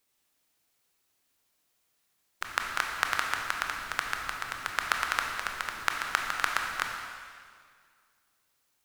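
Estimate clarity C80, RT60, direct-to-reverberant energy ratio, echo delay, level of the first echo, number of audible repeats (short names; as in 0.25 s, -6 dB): 4.0 dB, 2.0 s, 1.0 dB, none, none, none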